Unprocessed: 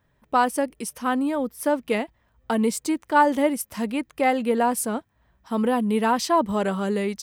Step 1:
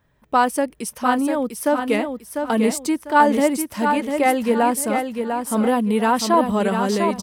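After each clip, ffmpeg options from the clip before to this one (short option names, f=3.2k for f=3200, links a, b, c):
-af "aecho=1:1:698|1396|2094|2792:0.501|0.15|0.0451|0.0135,volume=3dB"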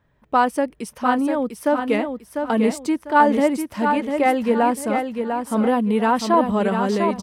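-af "highshelf=f=5.4k:g=-11.5"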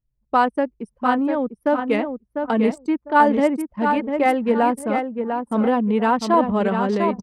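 -af "anlmdn=100"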